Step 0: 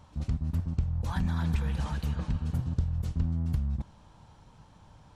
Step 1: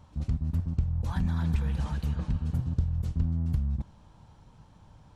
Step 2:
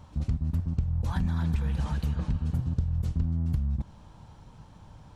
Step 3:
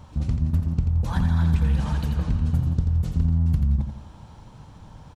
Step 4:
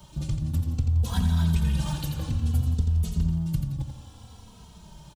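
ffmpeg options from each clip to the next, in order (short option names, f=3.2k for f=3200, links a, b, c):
-af "lowshelf=f=400:g=4.5,volume=-3dB"
-af "acompressor=threshold=-31dB:ratio=2,volume=4.5dB"
-af "aecho=1:1:86|172|258|344|430:0.447|0.174|0.0679|0.0265|0.0103,volume=4.5dB"
-filter_complex "[0:a]acrossover=split=130|450|1100[a][b][c][d];[c]acrusher=samples=11:mix=1:aa=0.000001[e];[d]aexciter=amount=2.7:drive=5.5:freq=2.8k[f];[a][b][e][f]amix=inputs=4:normalize=0,asplit=2[g][h];[h]adelay=2.8,afreqshift=-0.6[i];[g][i]amix=inputs=2:normalize=1"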